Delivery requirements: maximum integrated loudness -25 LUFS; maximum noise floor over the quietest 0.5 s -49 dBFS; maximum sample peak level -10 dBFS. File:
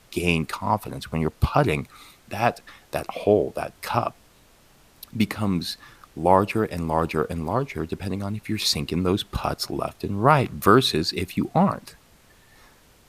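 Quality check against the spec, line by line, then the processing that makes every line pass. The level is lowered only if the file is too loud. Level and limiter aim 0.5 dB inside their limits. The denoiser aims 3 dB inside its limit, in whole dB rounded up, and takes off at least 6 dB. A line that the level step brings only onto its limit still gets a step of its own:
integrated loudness -24.0 LUFS: fail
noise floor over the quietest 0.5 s -55 dBFS: pass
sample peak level -2.5 dBFS: fail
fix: trim -1.5 dB; peak limiter -10.5 dBFS

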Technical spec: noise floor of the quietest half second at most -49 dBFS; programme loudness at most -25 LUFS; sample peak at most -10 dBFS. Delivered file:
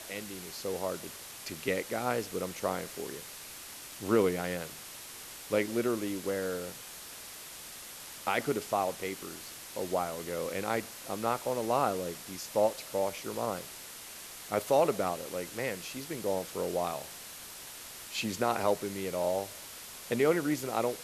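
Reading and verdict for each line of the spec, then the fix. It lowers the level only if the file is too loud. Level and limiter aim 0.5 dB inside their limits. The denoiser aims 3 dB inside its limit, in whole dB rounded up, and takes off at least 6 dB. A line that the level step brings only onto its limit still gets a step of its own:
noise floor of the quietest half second -46 dBFS: fail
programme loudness -34.0 LUFS: pass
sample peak -14.5 dBFS: pass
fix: noise reduction 6 dB, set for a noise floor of -46 dBFS

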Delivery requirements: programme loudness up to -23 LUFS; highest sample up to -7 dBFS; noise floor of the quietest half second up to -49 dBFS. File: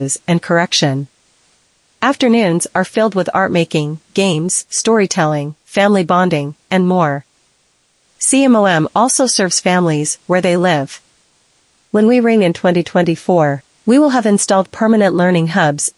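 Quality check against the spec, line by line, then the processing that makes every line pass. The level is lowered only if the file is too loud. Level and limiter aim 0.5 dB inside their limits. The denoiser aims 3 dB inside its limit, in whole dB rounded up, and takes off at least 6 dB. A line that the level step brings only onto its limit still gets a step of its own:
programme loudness -13.5 LUFS: fail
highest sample -2.0 dBFS: fail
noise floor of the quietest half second -58 dBFS: pass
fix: trim -10 dB

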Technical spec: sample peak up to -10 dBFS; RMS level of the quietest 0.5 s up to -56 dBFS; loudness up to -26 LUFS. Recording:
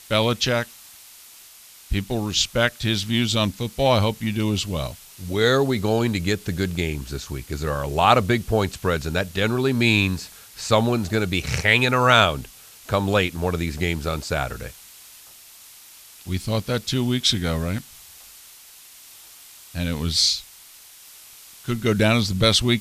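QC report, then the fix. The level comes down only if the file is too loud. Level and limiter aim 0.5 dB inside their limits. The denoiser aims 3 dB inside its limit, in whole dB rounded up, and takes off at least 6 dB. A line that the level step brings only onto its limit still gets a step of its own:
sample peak -2.0 dBFS: fail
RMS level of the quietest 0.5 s -47 dBFS: fail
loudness -21.5 LUFS: fail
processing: noise reduction 7 dB, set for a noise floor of -47 dBFS; trim -5 dB; peak limiter -10.5 dBFS

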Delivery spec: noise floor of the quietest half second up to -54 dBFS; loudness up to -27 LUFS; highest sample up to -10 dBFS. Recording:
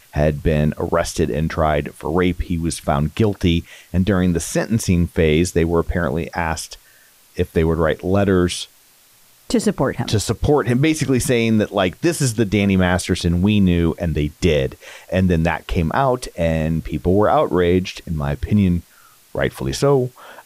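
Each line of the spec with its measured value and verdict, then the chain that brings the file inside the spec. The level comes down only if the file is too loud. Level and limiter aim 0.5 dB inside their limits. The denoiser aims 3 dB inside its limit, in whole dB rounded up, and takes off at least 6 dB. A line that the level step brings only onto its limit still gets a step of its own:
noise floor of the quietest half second -52 dBFS: fail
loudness -19.0 LUFS: fail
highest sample -5.0 dBFS: fail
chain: trim -8.5 dB

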